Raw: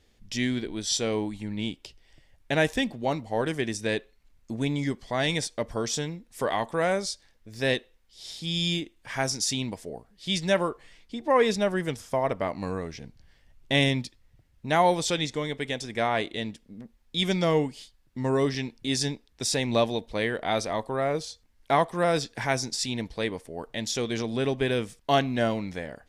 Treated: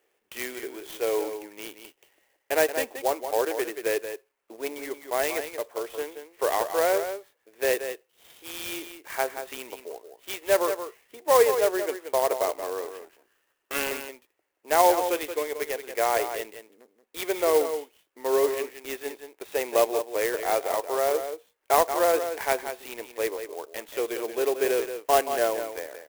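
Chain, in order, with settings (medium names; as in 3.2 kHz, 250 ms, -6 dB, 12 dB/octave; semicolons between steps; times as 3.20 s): 12.87–13.91 s: comb filter that takes the minimum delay 0.68 ms; elliptic band-pass 380–2900 Hz, stop band 40 dB; dynamic bell 490 Hz, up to +4 dB, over -35 dBFS, Q 0.73; 5.52–5.98 s: compression 1.5:1, threshold -34 dBFS, peak gain reduction 4.5 dB; delay 178 ms -9 dB; sampling jitter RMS 0.054 ms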